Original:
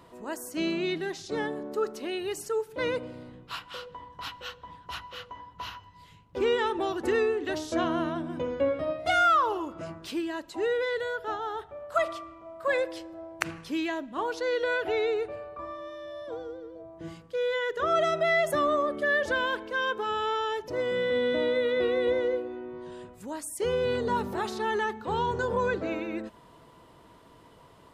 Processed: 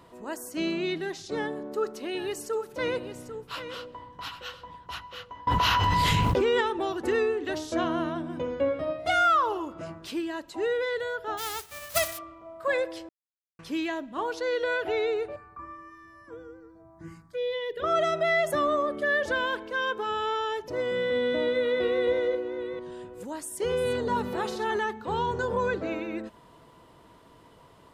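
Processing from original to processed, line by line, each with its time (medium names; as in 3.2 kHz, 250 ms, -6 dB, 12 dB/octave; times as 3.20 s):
1.35–4.87 s: delay 795 ms -10.5 dB
5.47–6.61 s: level flattener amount 100%
11.37–12.17 s: formants flattened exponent 0.1
13.09–13.59 s: mute
15.36–17.84 s: touch-sensitive phaser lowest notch 420 Hz, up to 1.4 kHz, full sweep at -26.5 dBFS
21.03–24.79 s: chunks repeated in reverse 441 ms, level -11 dB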